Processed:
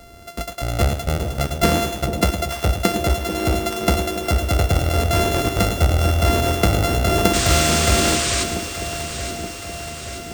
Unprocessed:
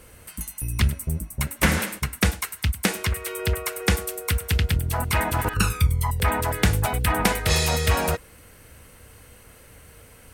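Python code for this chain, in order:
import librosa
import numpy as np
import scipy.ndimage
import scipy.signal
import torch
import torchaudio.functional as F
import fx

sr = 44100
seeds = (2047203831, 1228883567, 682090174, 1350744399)

p1 = np.r_[np.sort(x[:len(x) // 64 * 64].reshape(-1, 64), axis=1).ravel(), x[len(x) // 64 * 64:]]
p2 = fx.peak_eq(p1, sr, hz=340.0, db=10.5, octaves=0.81)
p3 = 10.0 ** (-19.0 / 20.0) * (np.abs((p2 / 10.0 ** (-19.0 / 20.0) + 3.0) % 4.0 - 2.0) - 1.0)
p4 = p2 + (p3 * 10.0 ** (-8.0 / 20.0))
p5 = fx.spec_paint(p4, sr, seeds[0], shape='noise', start_s=7.33, length_s=1.11, low_hz=1000.0, high_hz=9200.0, level_db=-24.0)
p6 = p5 + fx.echo_alternate(p5, sr, ms=437, hz=840.0, feedback_pct=78, wet_db=-8, dry=0)
p7 = fx.echo_crushed(p6, sr, ms=110, feedback_pct=35, bits=6, wet_db=-9.5)
y = p7 * 10.0 ** (1.0 / 20.0)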